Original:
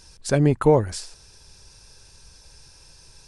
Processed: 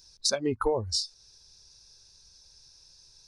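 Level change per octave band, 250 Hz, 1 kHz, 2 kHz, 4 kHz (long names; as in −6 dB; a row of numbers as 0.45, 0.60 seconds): −12.0, −7.5, −7.0, +7.5 decibels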